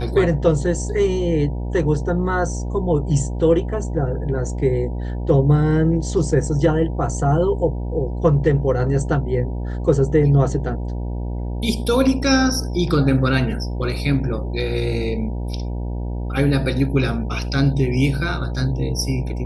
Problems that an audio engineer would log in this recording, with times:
mains buzz 60 Hz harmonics 16 −25 dBFS

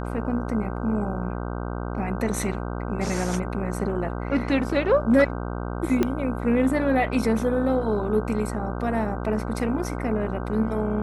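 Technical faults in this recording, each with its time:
mains buzz 60 Hz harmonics 26 −30 dBFS
0:06.03: click −10 dBFS

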